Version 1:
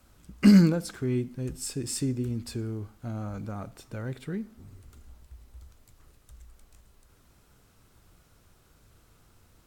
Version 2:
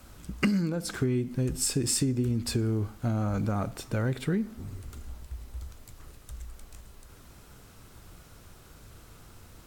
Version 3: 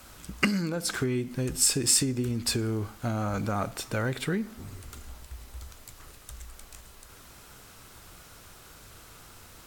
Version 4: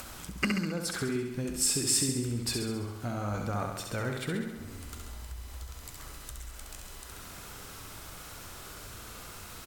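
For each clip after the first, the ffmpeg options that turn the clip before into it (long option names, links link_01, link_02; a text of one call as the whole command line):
ffmpeg -i in.wav -af "acompressor=threshold=-32dB:ratio=20,volume=9dB" out.wav
ffmpeg -i in.wav -af "lowshelf=frequency=480:gain=-9.5,volume=6dB" out.wav
ffmpeg -i in.wav -filter_complex "[0:a]asplit=2[link_01][link_02];[link_02]aecho=0:1:67|134|201|268|335|402|469|536:0.562|0.332|0.196|0.115|0.0681|0.0402|0.0237|0.014[link_03];[link_01][link_03]amix=inputs=2:normalize=0,acompressor=mode=upward:threshold=-30dB:ratio=2.5,volume=-5dB" out.wav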